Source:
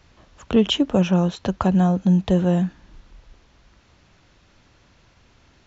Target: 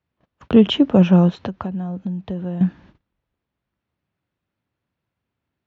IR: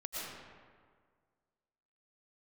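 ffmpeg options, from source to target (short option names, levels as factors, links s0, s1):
-filter_complex "[0:a]lowshelf=f=250:g=7,asettb=1/sr,asplit=3[s0][s1][s2];[s0]atrim=end=1.294[s3];[s1]atrim=start=1.29:end=2.61,asetpts=PTS-STARTPTS,afade=t=in:d=0.004:c=qsin,afade=t=out:st=1.316:d=0.004:c=qsin,acompressor=threshold=0.0562:ratio=16[s4];[s2]atrim=start=2.606[s5];[s3][s4]acrossfade=d=0.004:c1=hsin:c2=qsin[s6];[s6][s5]acrossfade=d=0.004:c1=qsin:c2=hsin,highpass=110,lowpass=3300,agate=range=0.0447:threshold=0.00501:ratio=16:detection=peak,volume=1.26"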